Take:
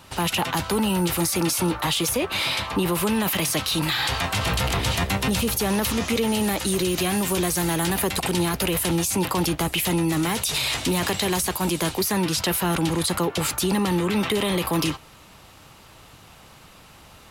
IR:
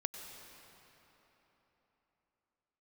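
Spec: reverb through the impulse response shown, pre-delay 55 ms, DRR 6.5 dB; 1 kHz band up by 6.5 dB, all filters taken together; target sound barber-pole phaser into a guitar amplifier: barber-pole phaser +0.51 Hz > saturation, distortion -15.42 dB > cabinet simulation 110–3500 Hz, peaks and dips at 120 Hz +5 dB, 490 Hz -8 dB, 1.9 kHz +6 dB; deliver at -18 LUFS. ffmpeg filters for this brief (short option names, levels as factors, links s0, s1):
-filter_complex "[0:a]equalizer=f=1000:t=o:g=8,asplit=2[s0][s1];[1:a]atrim=start_sample=2205,adelay=55[s2];[s1][s2]afir=irnorm=-1:irlink=0,volume=0.473[s3];[s0][s3]amix=inputs=2:normalize=0,asplit=2[s4][s5];[s5]afreqshift=0.51[s6];[s4][s6]amix=inputs=2:normalize=1,asoftclip=threshold=0.112,highpass=110,equalizer=f=120:t=q:w=4:g=5,equalizer=f=490:t=q:w=4:g=-8,equalizer=f=1900:t=q:w=4:g=6,lowpass=f=3500:w=0.5412,lowpass=f=3500:w=1.3066,volume=2.66"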